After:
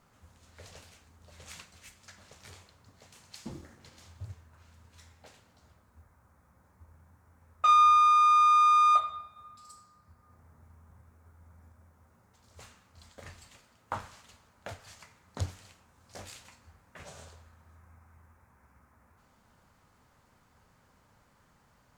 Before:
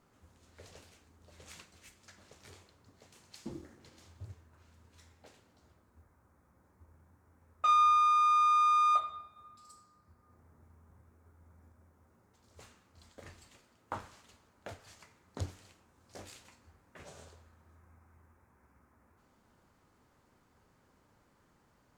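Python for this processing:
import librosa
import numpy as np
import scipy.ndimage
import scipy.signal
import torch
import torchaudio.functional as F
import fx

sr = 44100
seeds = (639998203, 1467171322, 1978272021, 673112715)

y = fx.peak_eq(x, sr, hz=340.0, db=-8.0, octaves=0.93)
y = F.gain(torch.from_numpy(y), 5.0).numpy()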